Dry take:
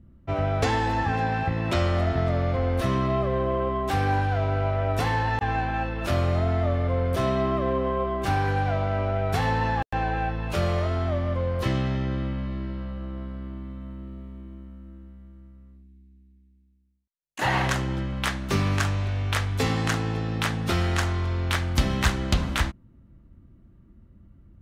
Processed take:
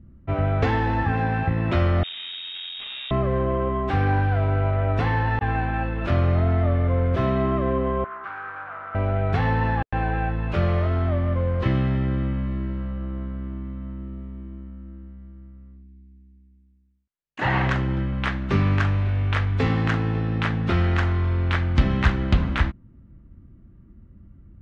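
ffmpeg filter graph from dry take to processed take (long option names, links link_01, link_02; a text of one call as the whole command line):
ffmpeg -i in.wav -filter_complex "[0:a]asettb=1/sr,asplit=3[link_01][link_02][link_03];[link_01]atrim=end=2.034[link_04];[link_02]atrim=start=2.03:end=3.11,asetpts=PTS-STARTPTS,afade=type=in:duration=0.004:curve=qsin,afade=type=out:start_time=1.076:duration=0.004:curve=qsin,equalizer=frequency=2000:width_type=o:width=0.91:gain=-8.5,aeval=exprs='(tanh(25.1*val(0)+0.65)-tanh(0.65))/25.1':channel_layout=same,lowpass=frequency=3200:width_type=q:width=0.5098,lowpass=frequency=3200:width_type=q:width=0.6013,lowpass=frequency=3200:width_type=q:width=0.9,lowpass=frequency=3200:width_type=q:width=2.563,afreqshift=-3800[link_05];[link_03]atrim=start=3.106[link_06];[link_04][link_05]acrossfade=duration=0.004:curve1=hsin:curve2=qsin[link_07];[link_07][link_06]acrossfade=duration=0.004:curve1=qsin:curve2=hsin,asettb=1/sr,asplit=3[link_08][link_09][link_10];[link_08]atrim=end=8.044[link_11];[link_09]atrim=start=8.04:end=8.95,asetpts=PTS-STARTPTS,afade=type=in:duration=0.004:curve=qsin,afade=type=out:start_time=0.906:duration=0.004:curve=qsin,acontrast=31,asoftclip=type=hard:threshold=-21.5dB,bandpass=frequency=1300:width_type=q:width=4[link_12];[link_10]atrim=start=8.946[link_13];[link_11][link_12]acrossfade=duration=0.004:curve1=hsin:curve2=qsin[link_14];[link_14][link_13]acrossfade=duration=0.004:curve1=qsin:curve2=hsin,lowpass=2200,equalizer=frequency=720:width=0.77:gain=-5,volume=4.5dB" out.wav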